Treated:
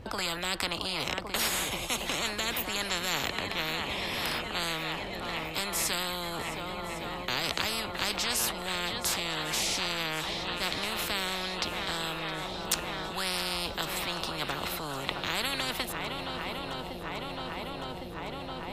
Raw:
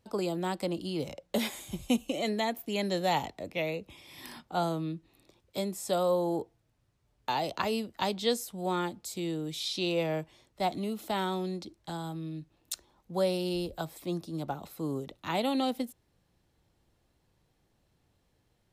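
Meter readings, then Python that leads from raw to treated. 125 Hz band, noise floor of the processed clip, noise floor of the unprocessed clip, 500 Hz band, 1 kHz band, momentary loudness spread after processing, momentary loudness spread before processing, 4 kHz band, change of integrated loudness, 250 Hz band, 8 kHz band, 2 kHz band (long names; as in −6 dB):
−2.5 dB, −39 dBFS, −73 dBFS, −5.0 dB, +0.5 dB, 8 LU, 11 LU, +8.5 dB, +1.5 dB, −6.0 dB, +10.5 dB, +9.5 dB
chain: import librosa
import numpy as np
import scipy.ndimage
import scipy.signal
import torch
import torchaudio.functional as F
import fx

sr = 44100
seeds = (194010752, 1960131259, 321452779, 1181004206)

y = fx.bass_treble(x, sr, bass_db=7, treble_db=-13)
y = fx.transient(y, sr, attack_db=-4, sustain_db=1)
y = fx.echo_swing(y, sr, ms=1109, ratio=1.5, feedback_pct=67, wet_db=-19.0)
y = fx.spectral_comp(y, sr, ratio=10.0)
y = y * 10.0 ** (7.5 / 20.0)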